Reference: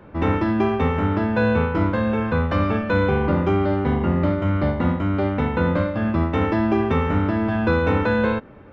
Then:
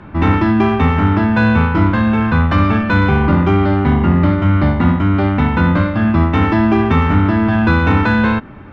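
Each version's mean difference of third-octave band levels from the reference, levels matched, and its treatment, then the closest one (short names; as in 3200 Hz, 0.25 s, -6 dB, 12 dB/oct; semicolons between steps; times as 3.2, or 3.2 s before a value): 1.5 dB: bell 500 Hz -12.5 dB 0.59 oct; in parallel at -6 dB: soft clip -27 dBFS, distortion -7 dB; on the sum: air absorption 57 m; gain +7.5 dB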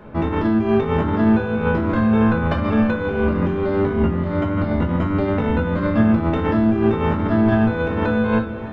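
3.5 dB: negative-ratio compressor -22 dBFS, ratio -0.5; on a send: diffused feedback echo 0.629 s, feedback 47%, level -12 dB; on the sum: shoebox room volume 260 m³, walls furnished, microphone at 1.4 m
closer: first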